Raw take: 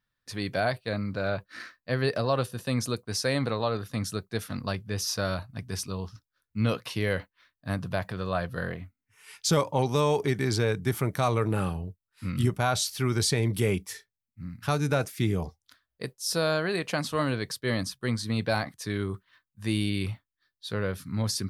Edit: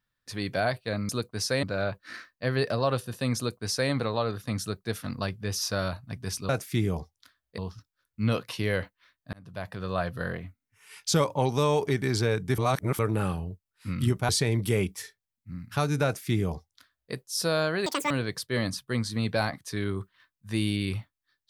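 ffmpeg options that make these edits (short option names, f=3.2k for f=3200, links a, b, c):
-filter_complex "[0:a]asplit=11[a][b][c][d][e][f][g][h][i][j][k];[a]atrim=end=1.092[l];[b]atrim=start=2.828:end=3.372[m];[c]atrim=start=1.088:end=5.952[n];[d]atrim=start=14.948:end=16.042[o];[e]atrim=start=5.948:end=7.7,asetpts=PTS-STARTPTS,afade=t=out:st=1.748:d=0.004:c=hsin[p];[f]atrim=start=7.7:end=10.952,asetpts=PTS-STARTPTS,afade=t=in:d=0.59[q];[g]atrim=start=10.948:end=11.362,asetpts=PTS-STARTPTS,areverse[r];[h]atrim=start=11.358:end=12.662[s];[i]atrim=start=13.198:end=16.774[t];[j]atrim=start=16.77:end=17.24,asetpts=PTS-STARTPTS,asetrate=84231,aresample=44100[u];[k]atrim=start=17.236[v];[l][m]acrossfade=d=0.004:c1=hsin:c2=hsin[w];[w][n]acrossfade=d=0.004:c1=hsin:c2=hsin[x];[x][o]acrossfade=d=0.004:c1=hsin:c2=hsin[y];[p][q]concat=n=2:v=0:a=1[z];[y][z]acrossfade=d=0.004:c1=hsin:c2=hsin[aa];[aa][r]acrossfade=d=0.004:c1=hsin:c2=hsin[ab];[ab][s]acrossfade=d=0.004:c1=hsin:c2=hsin[ac];[ac][t]acrossfade=d=0.004:c1=hsin:c2=hsin[ad];[ad][u]acrossfade=d=0.004:c1=hsin:c2=hsin[ae];[ae][v]acrossfade=d=0.004:c1=hsin:c2=hsin"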